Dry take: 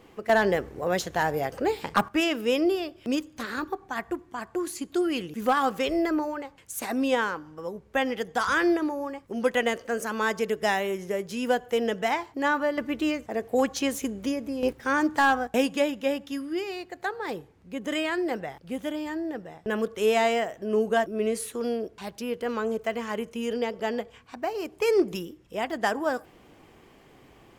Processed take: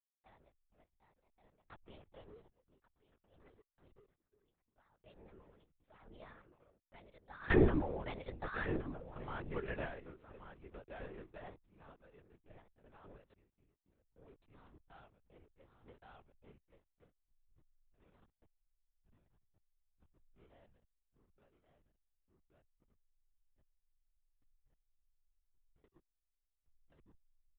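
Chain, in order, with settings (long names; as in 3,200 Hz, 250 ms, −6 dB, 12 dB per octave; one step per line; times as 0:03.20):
source passing by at 0:07.60, 44 m/s, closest 9.2 metres
slack as between gear wheels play −49 dBFS
single-tap delay 1,127 ms −5 dB
sample-and-hold tremolo 1.2 Hz, depth 95%
linear-prediction vocoder at 8 kHz whisper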